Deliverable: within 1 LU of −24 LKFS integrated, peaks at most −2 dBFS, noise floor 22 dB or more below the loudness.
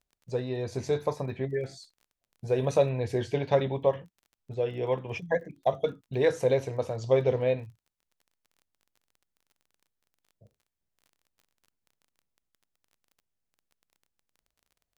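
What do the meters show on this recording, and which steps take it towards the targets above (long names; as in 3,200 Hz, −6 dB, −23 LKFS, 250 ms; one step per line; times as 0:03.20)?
crackle rate 23 per second; integrated loudness −29.0 LKFS; sample peak −11.0 dBFS; target loudness −24.0 LKFS
→ click removal
level +5 dB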